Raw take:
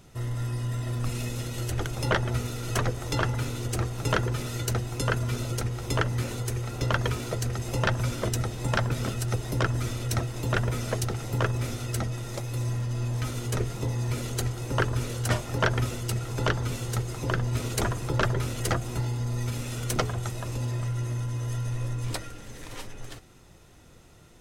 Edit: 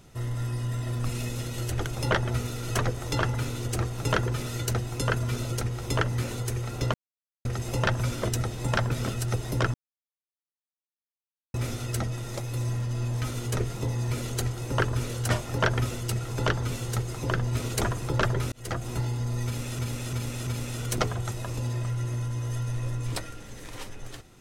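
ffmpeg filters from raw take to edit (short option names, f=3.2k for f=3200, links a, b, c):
-filter_complex "[0:a]asplit=9[a][b][c][d][e][f][g][h][i];[a]atrim=end=6.94,asetpts=PTS-STARTPTS,afade=t=out:st=6.936:d=0.004:c=hsin[j];[b]atrim=start=6.94:end=7.45,asetpts=PTS-STARTPTS,volume=0[k];[c]atrim=start=7.45:end=9.74,asetpts=PTS-STARTPTS,afade=t=in:d=0.004:c=hsin,afade=t=out:st=2.286:d=0.004:c=hsin[l];[d]atrim=start=9.74:end=11.54,asetpts=PTS-STARTPTS,volume=0[m];[e]atrim=start=11.54:end=18.52,asetpts=PTS-STARTPTS,afade=t=in:d=0.004:c=hsin,afade=t=out:st=6.976:d=0.004:c=hsin[n];[f]atrim=start=18.52:end=19.792,asetpts=PTS-STARTPTS,afade=t=in:d=0.37[o];[g]atrim=start=19.448:end=19.792[p];[h]atrim=start=19.448:end=19.792[q];[i]atrim=start=19.448[r];[j][k][l][m][n][o]concat=n=6:v=0:a=1[s];[s][p]acrossfade=d=0.004:c1=hsin:c2=hsin[t];[t][q]acrossfade=d=0.004:c1=hsin:c2=hsin[u];[u][r]acrossfade=d=0.004:c1=hsin:c2=hsin"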